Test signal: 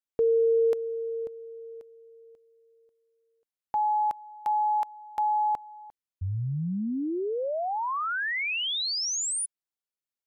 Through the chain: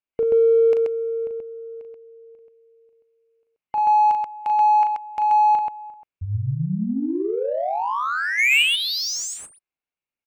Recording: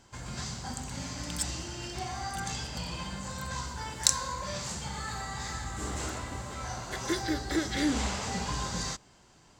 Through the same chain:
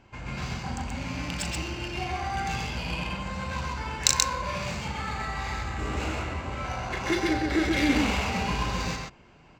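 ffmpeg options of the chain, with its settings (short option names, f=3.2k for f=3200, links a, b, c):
-af "superequalizer=12b=2.51:16b=0.631,aecho=1:1:37.9|131.2:0.501|0.794,adynamicsmooth=sensitivity=3.5:basefreq=2.8k,volume=3dB"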